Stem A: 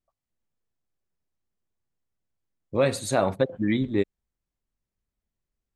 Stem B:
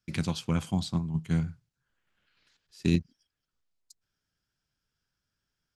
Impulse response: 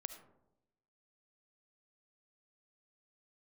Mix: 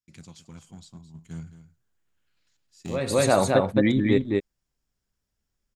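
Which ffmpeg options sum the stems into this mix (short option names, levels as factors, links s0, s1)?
-filter_complex "[0:a]adelay=150,volume=1.33,asplit=2[s0][s1];[s1]volume=0.708[s2];[1:a]equalizer=f=6800:w=2.4:g=13,bandreject=f=6300:w=13,asoftclip=type=hard:threshold=0.1,volume=0.376,afade=t=in:st=1.08:d=0.4:silence=0.398107,asplit=3[s3][s4][s5];[s4]volume=0.224[s6];[s5]apad=whole_len=260323[s7];[s0][s7]sidechaincompress=threshold=0.00891:ratio=8:attack=5.7:release=188[s8];[s2][s6]amix=inputs=2:normalize=0,aecho=0:1:216:1[s9];[s8][s3][s9]amix=inputs=3:normalize=0"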